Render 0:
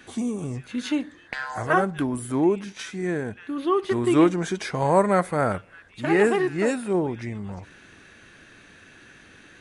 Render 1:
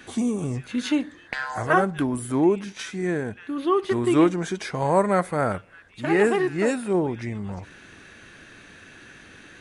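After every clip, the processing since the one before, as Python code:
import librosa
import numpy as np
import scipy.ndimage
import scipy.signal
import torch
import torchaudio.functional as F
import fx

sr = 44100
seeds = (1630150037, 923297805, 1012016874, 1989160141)

y = fx.rider(x, sr, range_db=3, speed_s=2.0)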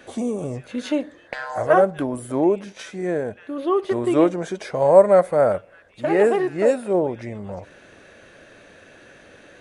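y = fx.peak_eq(x, sr, hz=570.0, db=15.0, octaves=0.77)
y = y * 10.0 ** (-3.5 / 20.0)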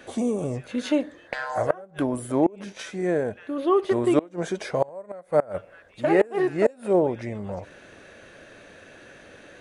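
y = fx.gate_flip(x, sr, shuts_db=-8.0, range_db=-27)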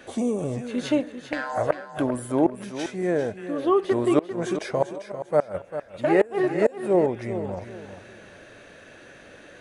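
y = fx.echo_feedback(x, sr, ms=396, feedback_pct=28, wet_db=-11)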